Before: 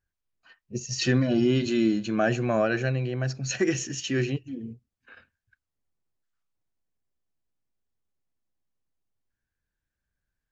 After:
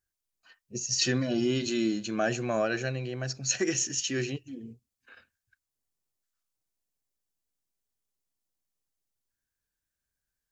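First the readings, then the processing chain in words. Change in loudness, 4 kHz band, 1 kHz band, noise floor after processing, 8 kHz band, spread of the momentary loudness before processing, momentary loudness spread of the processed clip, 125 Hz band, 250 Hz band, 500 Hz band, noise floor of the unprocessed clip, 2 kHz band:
-3.0 dB, +1.5 dB, -3.5 dB, under -85 dBFS, n/a, 13 LU, 12 LU, -7.0 dB, -5.0 dB, -4.0 dB, under -85 dBFS, -3.0 dB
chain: tone controls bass -4 dB, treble +10 dB; gain -3.5 dB

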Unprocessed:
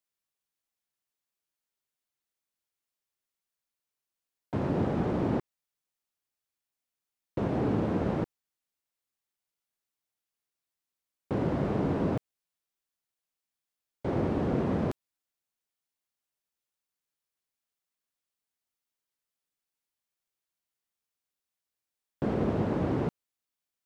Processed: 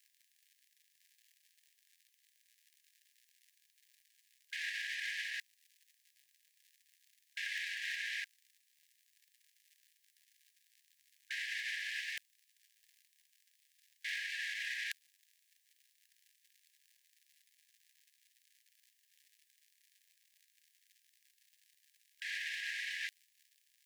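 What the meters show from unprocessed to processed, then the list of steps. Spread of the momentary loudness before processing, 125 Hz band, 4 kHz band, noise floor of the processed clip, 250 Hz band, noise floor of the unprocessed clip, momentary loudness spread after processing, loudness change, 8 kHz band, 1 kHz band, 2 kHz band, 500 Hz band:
7 LU, under -40 dB, +12.0 dB, -76 dBFS, under -40 dB, under -85 dBFS, 8 LU, -9.0 dB, n/a, under -40 dB, +9.0 dB, under -40 dB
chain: limiter -21.5 dBFS, peak gain reduction 5 dB; hard clip -27.5 dBFS, distortion -13 dB; crackle 140/s -64 dBFS; brick-wall FIR high-pass 1600 Hz; gain +13 dB

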